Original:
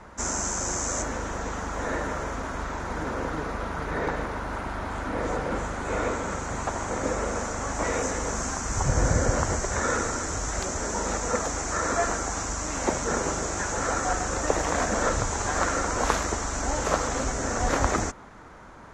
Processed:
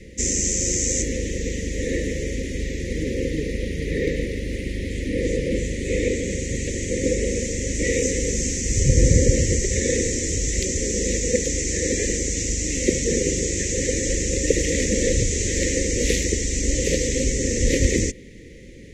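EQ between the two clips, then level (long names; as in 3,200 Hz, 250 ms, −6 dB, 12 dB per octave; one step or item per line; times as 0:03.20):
Chebyshev band-stop filter 530–1,900 Hz, order 5
+8.0 dB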